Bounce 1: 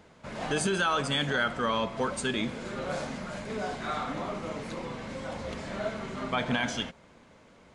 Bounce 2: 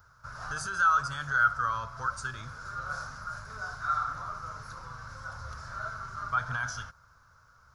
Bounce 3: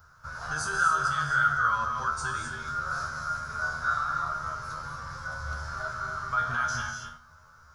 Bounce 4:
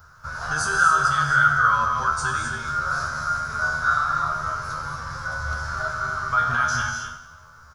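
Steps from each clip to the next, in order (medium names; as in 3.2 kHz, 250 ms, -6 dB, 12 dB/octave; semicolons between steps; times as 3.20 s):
FFT filter 120 Hz 0 dB, 200 Hz -24 dB, 320 Hz -26 dB, 820 Hz -13 dB, 1.4 kHz +8 dB, 2 kHz -18 dB, 3.2 kHz -19 dB, 5.5 kHz +1 dB, 8.6 kHz -14 dB, 13 kHz +10 dB; trim +1.5 dB
in parallel at 0 dB: peak limiter -23.5 dBFS, peak gain reduction 10 dB; on the sum: feedback comb 78 Hz, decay 0.3 s, harmonics all, mix 90%; gated-style reverb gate 290 ms rising, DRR 3.5 dB; trim +5 dB
feedback delay 91 ms, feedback 57%, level -13 dB; trim +6.5 dB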